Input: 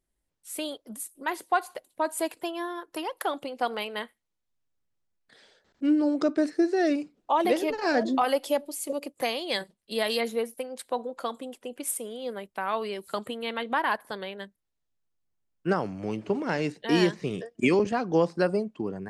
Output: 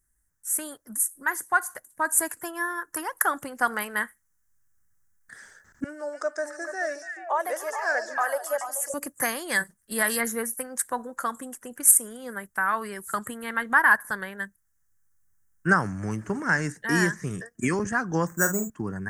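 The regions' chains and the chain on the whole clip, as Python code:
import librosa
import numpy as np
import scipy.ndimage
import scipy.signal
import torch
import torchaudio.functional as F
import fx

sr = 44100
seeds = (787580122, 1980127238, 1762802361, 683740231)

y = fx.chain(x, sr, fx.ladder_highpass(hz=530.0, resonance_pct=65),
    fx.echo_stepped(ms=144, hz=5900.0, octaves=-1.4, feedback_pct=70, wet_db=-0.5), at=(5.84, 8.94))
y = fx.chain(y, sr, fx.air_absorb(metres=360.0),
    fx.resample_bad(factor=6, down='filtered', up='hold'),
    fx.doubler(ms=47.0, db=-9.0), at=(18.27, 18.7))
y = fx.curve_eq(y, sr, hz=(100.0, 480.0, 690.0, 1700.0, 2500.0, 4100.0, 6100.0, 8800.0), db=(0, -15, -13, 5, -16, -19, 3, 6))
y = fx.rider(y, sr, range_db=5, speed_s=2.0)
y = F.gain(torch.from_numpy(y), 7.5).numpy()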